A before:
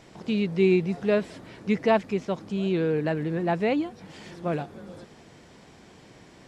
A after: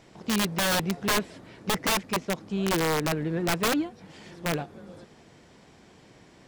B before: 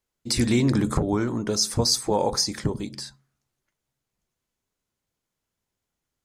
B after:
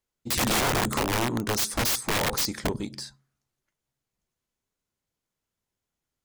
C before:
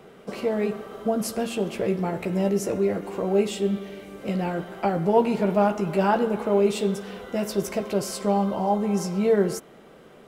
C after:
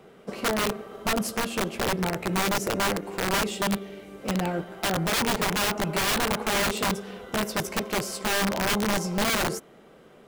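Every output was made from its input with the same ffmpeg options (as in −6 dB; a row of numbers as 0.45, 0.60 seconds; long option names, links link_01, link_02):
-af "aeval=exprs='(mod(8.91*val(0)+1,2)-1)/8.91':channel_layout=same,aeval=exprs='0.119*(cos(1*acos(clip(val(0)/0.119,-1,1)))-cos(1*PI/2))+0.00531*(cos(3*acos(clip(val(0)/0.119,-1,1)))-cos(3*PI/2))+0.00211*(cos(5*acos(clip(val(0)/0.119,-1,1)))-cos(5*PI/2))+0.00422*(cos(7*acos(clip(val(0)/0.119,-1,1)))-cos(7*PI/2))':channel_layout=same"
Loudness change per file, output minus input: −1.0, −2.0, −1.5 LU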